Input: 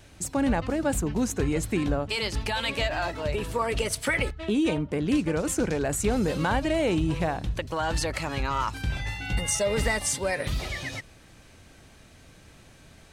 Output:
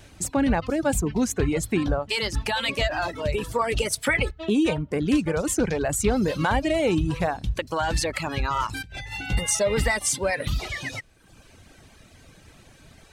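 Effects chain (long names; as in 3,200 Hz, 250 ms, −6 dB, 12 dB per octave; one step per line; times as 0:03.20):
reverb reduction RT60 0.89 s
0:08.67–0:09.29: compressor whose output falls as the input rises −40 dBFS, ratio −1
level +3.5 dB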